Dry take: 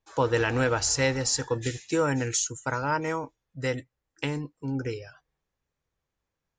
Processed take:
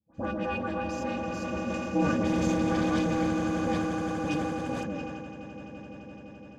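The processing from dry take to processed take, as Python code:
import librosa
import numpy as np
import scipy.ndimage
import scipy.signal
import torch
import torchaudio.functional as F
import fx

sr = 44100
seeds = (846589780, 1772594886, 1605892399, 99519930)

y = fx.lower_of_two(x, sr, delay_ms=4.6)
y = fx.octave_resonator(y, sr, note='E', decay_s=0.12)
y = fx.echo_swell(y, sr, ms=85, loudest=8, wet_db=-11.5)
y = y * np.sin(2.0 * np.pi * 150.0 * np.arange(len(y)) / sr)
y = scipy.signal.sosfilt(scipy.signal.butter(2, 75.0, 'highpass', fs=sr, output='sos'), y)
y = fx.leveller(y, sr, passes=2, at=(2.17, 4.76))
y = scipy.signal.sosfilt(scipy.signal.butter(2, 7200.0, 'lowpass', fs=sr, output='sos'), y)
y = fx.bass_treble(y, sr, bass_db=14, treble_db=14)
y = fx.notch_comb(y, sr, f0_hz=1400.0)
y = fx.dispersion(y, sr, late='highs', ms=78.0, hz=1400.0)
y = fx.sustainer(y, sr, db_per_s=21.0)
y = y * librosa.db_to_amplitude(8.0)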